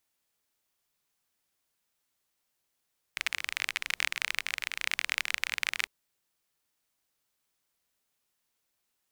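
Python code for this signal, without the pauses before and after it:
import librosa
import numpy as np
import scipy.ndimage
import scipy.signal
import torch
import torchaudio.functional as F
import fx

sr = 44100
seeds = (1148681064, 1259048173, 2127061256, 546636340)

y = fx.rain(sr, seeds[0], length_s=2.7, drops_per_s=30.0, hz=2200.0, bed_db=-28)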